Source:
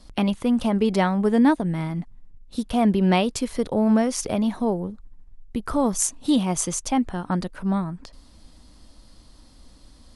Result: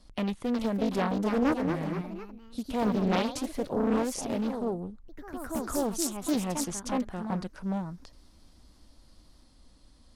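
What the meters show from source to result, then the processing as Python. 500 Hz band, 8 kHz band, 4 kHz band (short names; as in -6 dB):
-5.5 dB, -8.5 dB, -7.0 dB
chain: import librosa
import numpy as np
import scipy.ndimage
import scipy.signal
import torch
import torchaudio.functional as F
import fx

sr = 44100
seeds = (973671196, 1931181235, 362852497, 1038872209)

y = fx.echo_pitch(x, sr, ms=387, semitones=2, count=3, db_per_echo=-6.0)
y = fx.doppler_dist(y, sr, depth_ms=0.73)
y = y * 10.0 ** (-8.0 / 20.0)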